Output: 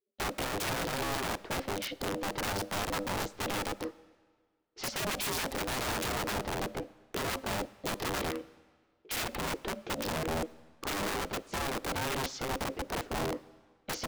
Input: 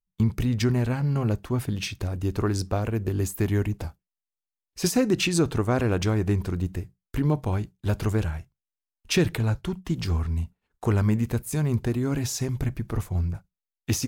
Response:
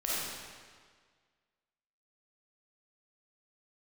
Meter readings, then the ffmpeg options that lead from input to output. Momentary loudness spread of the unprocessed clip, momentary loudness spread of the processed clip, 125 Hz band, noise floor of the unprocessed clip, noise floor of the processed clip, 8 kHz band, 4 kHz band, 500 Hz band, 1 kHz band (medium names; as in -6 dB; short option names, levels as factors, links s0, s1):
8 LU, 6 LU, -18.5 dB, under -85 dBFS, -72 dBFS, -4.0 dB, -1.0 dB, -6.5 dB, +2.5 dB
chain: -filter_complex "[0:a]lowpass=f=4900:w=0.5412,lowpass=f=4900:w=1.3066,aeval=exprs='(mod(15.8*val(0)+1,2)-1)/15.8':c=same,aeval=exprs='val(0)*sin(2*PI*400*n/s)':c=same,asplit=2[s0][s1];[1:a]atrim=start_sample=2205[s2];[s1][s2]afir=irnorm=-1:irlink=0,volume=0.0473[s3];[s0][s3]amix=inputs=2:normalize=0,volume=0.794"